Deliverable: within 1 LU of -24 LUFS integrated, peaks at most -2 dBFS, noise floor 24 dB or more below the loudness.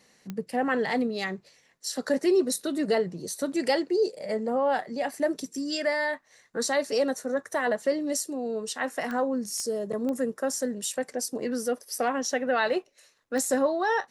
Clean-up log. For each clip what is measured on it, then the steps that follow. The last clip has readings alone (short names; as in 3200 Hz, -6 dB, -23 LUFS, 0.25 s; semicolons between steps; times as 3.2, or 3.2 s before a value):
clicks 5; loudness -28.0 LUFS; peak -13.5 dBFS; loudness target -24.0 LUFS
-> de-click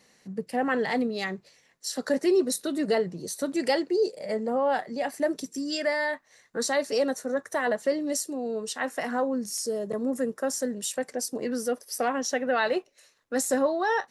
clicks 0; loudness -28.0 LUFS; peak -13.5 dBFS; loudness target -24.0 LUFS
-> gain +4 dB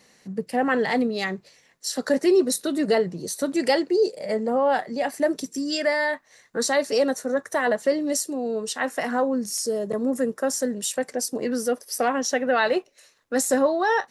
loudness -24.0 LUFS; peak -9.5 dBFS; noise floor -59 dBFS